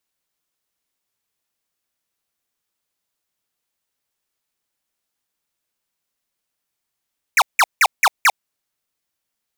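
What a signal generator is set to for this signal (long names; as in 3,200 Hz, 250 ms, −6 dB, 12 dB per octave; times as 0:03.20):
repeated falling chirps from 2,600 Hz, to 680 Hz, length 0.05 s square, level −12 dB, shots 5, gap 0.17 s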